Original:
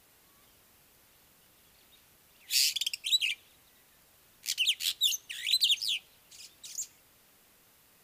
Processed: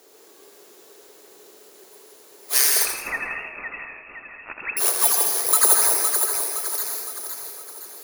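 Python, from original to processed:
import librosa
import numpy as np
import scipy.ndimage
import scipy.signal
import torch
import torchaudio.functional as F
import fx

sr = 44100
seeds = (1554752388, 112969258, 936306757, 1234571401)

y = fx.bit_reversed(x, sr, seeds[0], block=16)
y = fx.highpass_res(y, sr, hz=400.0, q=4.9)
y = fx.echo_feedback(y, sr, ms=514, feedback_pct=49, wet_db=-6)
y = fx.rev_plate(y, sr, seeds[1], rt60_s=0.65, hf_ratio=0.95, predelay_ms=120, drr_db=2.5)
y = fx.freq_invert(y, sr, carrier_hz=3000, at=(2.85, 4.77))
y = fx.echo_warbled(y, sr, ms=82, feedback_pct=49, rate_hz=2.8, cents=89, wet_db=-7)
y = y * 10.0 ** (8.0 / 20.0)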